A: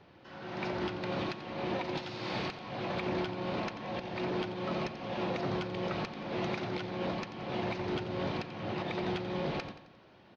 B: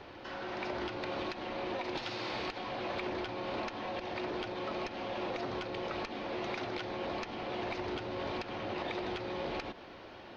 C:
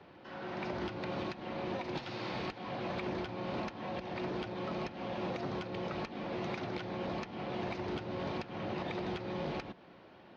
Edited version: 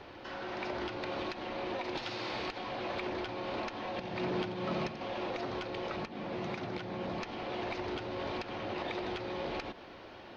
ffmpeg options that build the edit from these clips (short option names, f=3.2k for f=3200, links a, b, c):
-filter_complex "[1:a]asplit=3[a][b][c];[a]atrim=end=3.982[d];[0:a]atrim=start=3.978:end=5.012[e];[b]atrim=start=5.008:end=5.962[f];[2:a]atrim=start=5.958:end=7.202[g];[c]atrim=start=7.198[h];[d][e]acrossfade=d=0.004:c1=hsin:c2=hsin[i];[i][f]acrossfade=d=0.004:c1=hsin:c2=hsin[j];[j][g]acrossfade=d=0.004:c1=hsin:c2=hsin[k];[k][h]acrossfade=d=0.004:c1=hsin:c2=hsin"